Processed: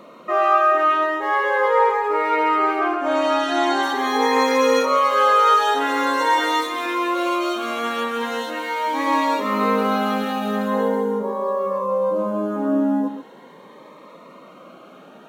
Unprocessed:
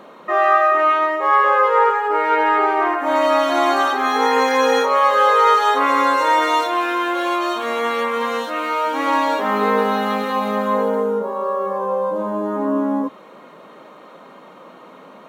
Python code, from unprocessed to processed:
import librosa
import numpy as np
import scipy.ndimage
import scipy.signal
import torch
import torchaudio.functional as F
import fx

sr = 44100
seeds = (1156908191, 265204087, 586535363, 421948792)

y = fx.lowpass(x, sr, hz=8000.0, slope=12, at=(2.79, 3.83))
y = fx.comb(y, sr, ms=7.1, depth=0.6, at=(6.37, 6.86))
y = y + 10.0 ** (-9.5 / 20.0) * np.pad(y, (int(134 * sr / 1000.0), 0))[:len(y)]
y = fx.notch_cascade(y, sr, direction='rising', hz=0.42)